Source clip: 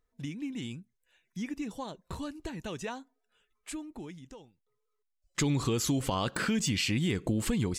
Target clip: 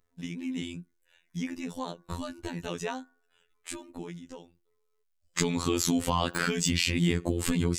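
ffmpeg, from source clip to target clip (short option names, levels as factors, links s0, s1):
-af "bandreject=f=367.4:t=h:w=4,bandreject=f=734.8:t=h:w=4,bandreject=f=1102.2:t=h:w=4,bandreject=f=1469.6:t=h:w=4,bandreject=f=1837:t=h:w=4,afftfilt=real='hypot(re,im)*cos(PI*b)':imag='0':win_size=2048:overlap=0.75,volume=2.11"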